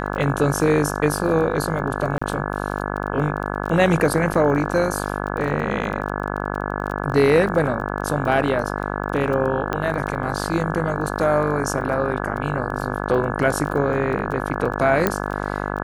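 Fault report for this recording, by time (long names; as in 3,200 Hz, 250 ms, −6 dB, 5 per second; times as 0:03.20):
mains buzz 50 Hz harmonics 34 −26 dBFS
surface crackle 18 per second −28 dBFS
0:02.18–0:02.21: drop-out 35 ms
0:04.34: drop-out 4 ms
0:09.73: click −10 dBFS
0:15.07: click −4 dBFS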